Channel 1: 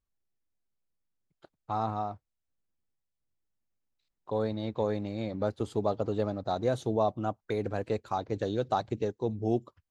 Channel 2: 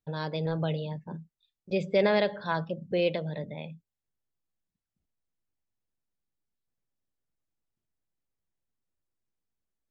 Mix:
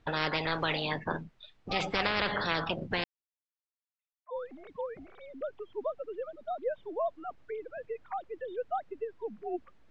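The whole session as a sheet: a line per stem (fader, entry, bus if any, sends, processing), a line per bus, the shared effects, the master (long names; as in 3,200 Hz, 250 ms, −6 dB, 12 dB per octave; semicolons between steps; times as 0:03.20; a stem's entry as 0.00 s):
−2.0 dB, 0.00 s, no send, three sine waves on the formant tracks; reverb reduction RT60 1 s; low-shelf EQ 460 Hz −11 dB
+2.0 dB, 0.00 s, muted 0:03.04–0:04.36, no send, every bin compressed towards the loudest bin 10 to 1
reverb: not used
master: low-pass filter 2,600 Hz 12 dB per octave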